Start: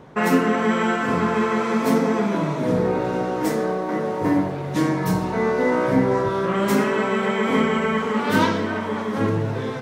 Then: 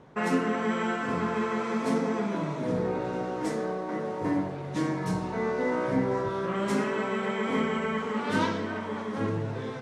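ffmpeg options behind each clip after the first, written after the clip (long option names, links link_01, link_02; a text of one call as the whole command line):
ffmpeg -i in.wav -af "lowpass=frequency=10000:width=0.5412,lowpass=frequency=10000:width=1.3066,volume=-8dB" out.wav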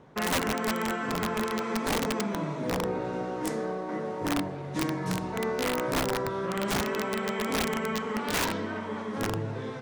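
ffmpeg -i in.wav -af "aeval=exprs='(mod(10*val(0)+1,2)-1)/10':channel_layout=same,volume=-1dB" out.wav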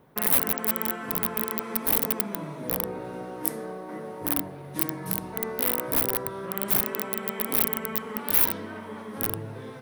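ffmpeg -i in.wav -af "aexciter=amount=8.8:drive=7.7:freq=9900,volume=-4dB" out.wav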